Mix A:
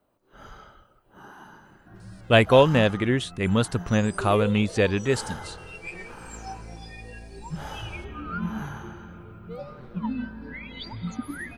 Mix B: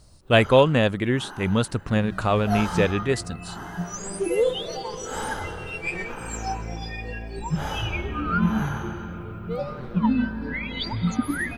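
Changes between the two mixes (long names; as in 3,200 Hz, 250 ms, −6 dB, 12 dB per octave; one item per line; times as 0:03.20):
speech: entry −2.00 s
first sound +6.5 dB
second sound +8.5 dB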